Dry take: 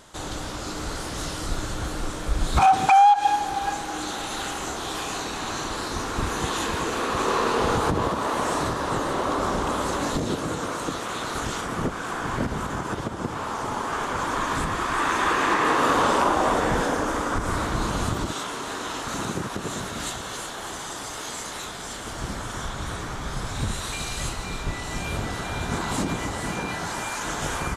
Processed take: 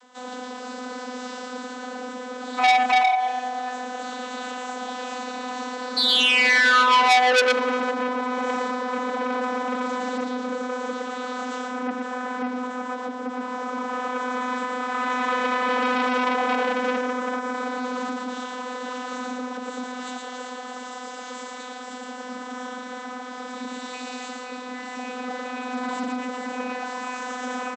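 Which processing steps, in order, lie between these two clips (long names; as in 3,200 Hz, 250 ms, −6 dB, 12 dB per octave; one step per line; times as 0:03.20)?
sound drawn into the spectrogram fall, 0:05.96–0:07.40, 480–4,400 Hz −14 dBFS
bass and treble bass −11 dB, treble +1 dB
single-tap delay 115 ms −4 dB
channel vocoder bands 32, saw 251 Hz
saturating transformer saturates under 3,500 Hz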